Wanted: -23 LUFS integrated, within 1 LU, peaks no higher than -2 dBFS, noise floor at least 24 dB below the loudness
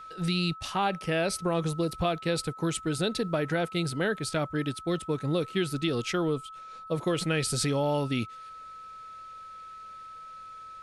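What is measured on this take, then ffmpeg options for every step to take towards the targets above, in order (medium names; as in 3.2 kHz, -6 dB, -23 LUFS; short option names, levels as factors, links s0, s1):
steady tone 1.3 kHz; tone level -42 dBFS; loudness -29.5 LUFS; peak level -14.5 dBFS; loudness target -23.0 LUFS
-> -af "bandreject=f=1300:w=30"
-af "volume=2.11"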